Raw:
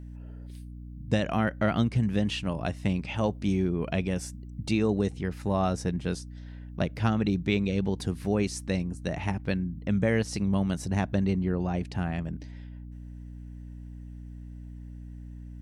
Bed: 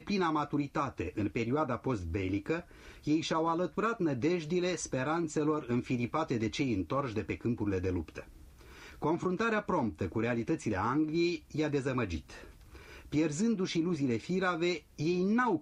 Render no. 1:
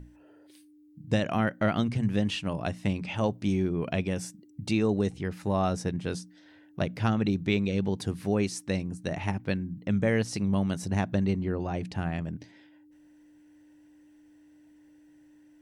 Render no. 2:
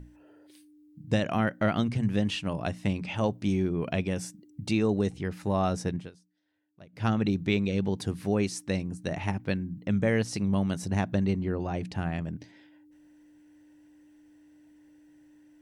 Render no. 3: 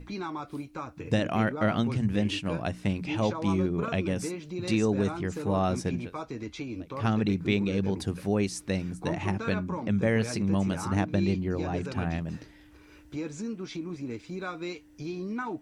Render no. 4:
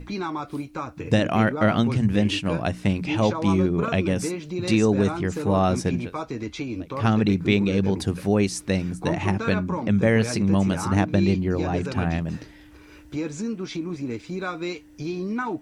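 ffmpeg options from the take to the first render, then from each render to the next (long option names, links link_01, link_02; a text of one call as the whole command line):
ffmpeg -i in.wav -af "bandreject=frequency=60:width_type=h:width=6,bandreject=frequency=120:width_type=h:width=6,bandreject=frequency=180:width_type=h:width=6,bandreject=frequency=240:width_type=h:width=6" out.wav
ffmpeg -i in.wav -filter_complex "[0:a]asplit=3[link_01][link_02][link_03];[link_01]atrim=end=6.11,asetpts=PTS-STARTPTS,afade=type=out:start_time=5.95:duration=0.16:silence=0.0749894[link_04];[link_02]atrim=start=6.11:end=6.92,asetpts=PTS-STARTPTS,volume=-22.5dB[link_05];[link_03]atrim=start=6.92,asetpts=PTS-STARTPTS,afade=type=in:duration=0.16:silence=0.0749894[link_06];[link_04][link_05][link_06]concat=n=3:v=0:a=1" out.wav
ffmpeg -i in.wav -i bed.wav -filter_complex "[1:a]volume=-5dB[link_01];[0:a][link_01]amix=inputs=2:normalize=0" out.wav
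ffmpeg -i in.wav -af "volume=6dB" out.wav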